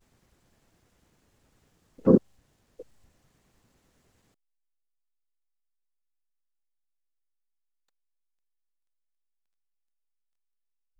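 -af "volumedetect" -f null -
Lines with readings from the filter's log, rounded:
mean_volume: -35.7 dB
max_volume: -5.1 dB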